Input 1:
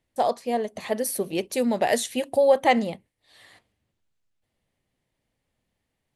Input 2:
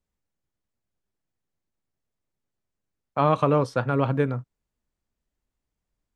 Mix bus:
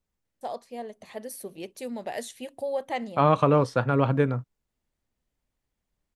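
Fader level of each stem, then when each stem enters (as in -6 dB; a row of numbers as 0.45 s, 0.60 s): -11.5 dB, +0.5 dB; 0.25 s, 0.00 s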